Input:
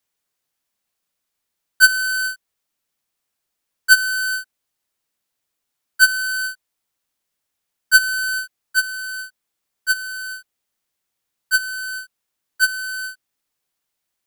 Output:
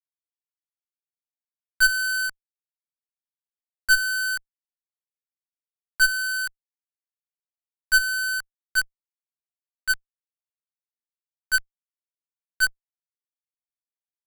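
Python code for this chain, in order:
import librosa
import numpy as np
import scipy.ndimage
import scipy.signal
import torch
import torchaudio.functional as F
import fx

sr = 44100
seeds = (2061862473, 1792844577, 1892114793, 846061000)

y = np.where(np.abs(x) >= 10.0 ** (-25.0 / 20.0), x, 0.0)
y = fx.tube_stage(y, sr, drive_db=13.0, bias=0.65)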